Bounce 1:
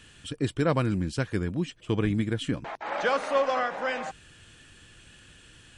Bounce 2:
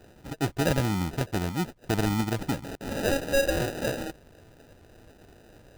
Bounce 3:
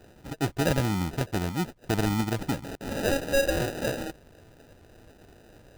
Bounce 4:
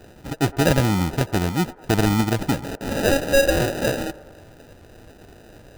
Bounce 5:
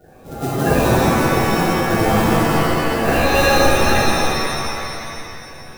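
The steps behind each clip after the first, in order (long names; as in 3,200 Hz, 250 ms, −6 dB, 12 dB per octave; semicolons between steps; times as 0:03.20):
sample-rate reduction 1,100 Hz, jitter 0%
no processing that can be heard
delay with a band-pass on its return 107 ms, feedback 63%, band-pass 740 Hz, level −17.5 dB; level +7 dB
spectral magnitudes quantised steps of 30 dB; reverb with rising layers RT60 2.4 s, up +7 semitones, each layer −2 dB, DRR −8 dB; level −6 dB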